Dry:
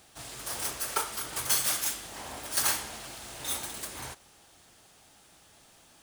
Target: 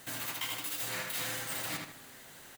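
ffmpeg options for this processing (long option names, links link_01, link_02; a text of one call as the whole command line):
ffmpeg -i in.wav -filter_complex "[0:a]bandreject=frequency=2300:width=20,areverse,acompressor=threshold=-38dB:ratio=10,areverse,asplit=2[link_01][link_02];[link_02]adelay=18,volume=-10.5dB[link_03];[link_01][link_03]amix=inputs=2:normalize=0,asplit=2[link_04][link_05];[link_05]adelay=178,lowpass=frequency=1800:poles=1,volume=-3dB,asplit=2[link_06][link_07];[link_07]adelay=178,lowpass=frequency=1800:poles=1,volume=0.38,asplit=2[link_08][link_09];[link_09]adelay=178,lowpass=frequency=1800:poles=1,volume=0.38,asplit=2[link_10][link_11];[link_11]adelay=178,lowpass=frequency=1800:poles=1,volume=0.38,asplit=2[link_12][link_13];[link_13]adelay=178,lowpass=frequency=1800:poles=1,volume=0.38[link_14];[link_04][link_06][link_08][link_10][link_12][link_14]amix=inputs=6:normalize=0,asetrate=103194,aresample=44100,volume=6dB" out.wav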